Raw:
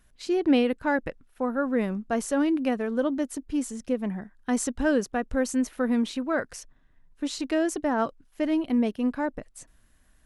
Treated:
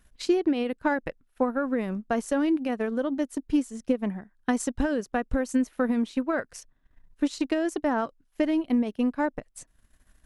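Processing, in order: limiter -19 dBFS, peak gain reduction 9 dB; transient shaper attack +6 dB, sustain -8 dB

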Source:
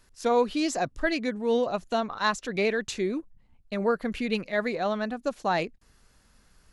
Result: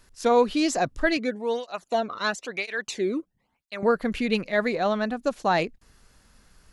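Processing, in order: 1.17–3.83 tape flanging out of phase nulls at 1 Hz, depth 1.3 ms; gain +3.5 dB

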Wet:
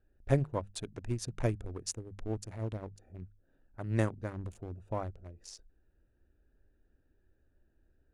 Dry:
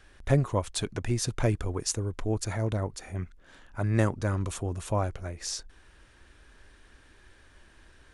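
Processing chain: Wiener smoothing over 41 samples; notches 50/100/150/200 Hz; upward expander 1.5:1, over -37 dBFS; gain -2.5 dB

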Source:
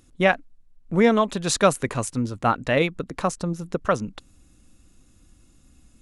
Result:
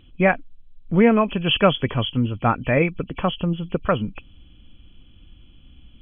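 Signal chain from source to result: nonlinear frequency compression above 2300 Hz 4:1; low shelf 190 Hz +8.5 dB

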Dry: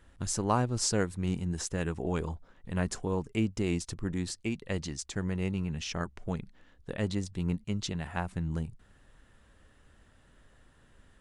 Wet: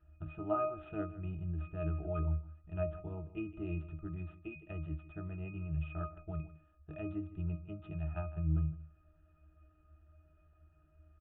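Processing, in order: median filter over 9 samples; bell 190 Hz -11.5 dB 2.3 oct; octave resonator D#, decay 0.29 s; on a send: echo 0.157 s -16.5 dB; on the sum: downsampling 8000 Hz; gain +13.5 dB

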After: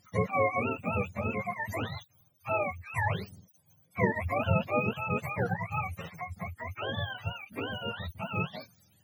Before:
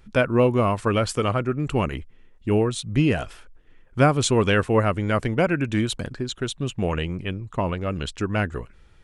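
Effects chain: spectrum mirrored in octaves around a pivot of 520 Hz; dynamic EQ 310 Hz, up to -4 dB, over -34 dBFS, Q 1.3; gain -7 dB

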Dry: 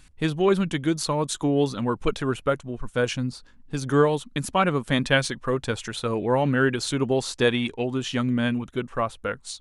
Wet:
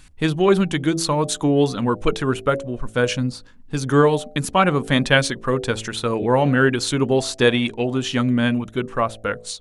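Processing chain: de-hum 55.09 Hz, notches 14; gain +5 dB

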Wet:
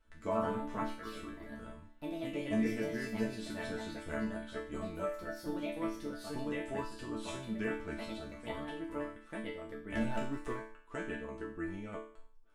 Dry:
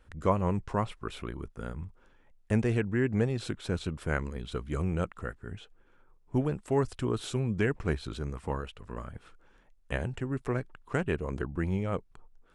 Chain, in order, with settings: echoes that change speed 0.124 s, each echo +3 st, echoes 2; 9.95–10.53 sample leveller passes 2; resonator bank A3 sus4, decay 0.49 s; gain +12.5 dB

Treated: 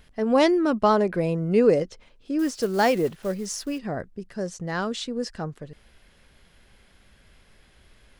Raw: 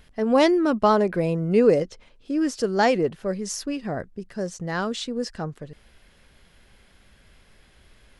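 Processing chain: 2.39–3.79 block floating point 5-bit; gain -1 dB

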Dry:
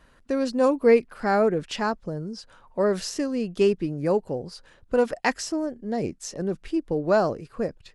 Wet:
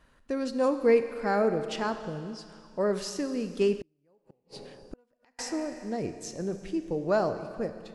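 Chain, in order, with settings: Schroeder reverb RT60 2.2 s, combs from 28 ms, DRR 9 dB; 4.31–4.74 spectral gain 1800–4500 Hz +7 dB; 3.8–5.39 flipped gate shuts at -23 dBFS, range -39 dB; gain -5 dB

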